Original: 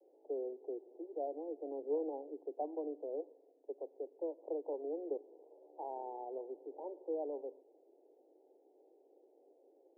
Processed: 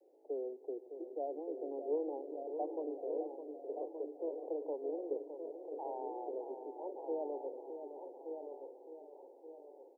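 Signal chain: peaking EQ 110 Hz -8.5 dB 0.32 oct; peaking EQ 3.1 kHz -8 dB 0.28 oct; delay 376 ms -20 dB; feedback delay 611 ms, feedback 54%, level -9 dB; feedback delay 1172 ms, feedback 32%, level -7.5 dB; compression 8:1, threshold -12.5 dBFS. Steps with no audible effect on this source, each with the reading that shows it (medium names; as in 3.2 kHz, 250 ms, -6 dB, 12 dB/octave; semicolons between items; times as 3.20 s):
peaking EQ 110 Hz: input has nothing below 240 Hz; peaking EQ 3.1 kHz: input has nothing above 1 kHz; compression, threshold -12.5 dBFS: peak at its input -26.5 dBFS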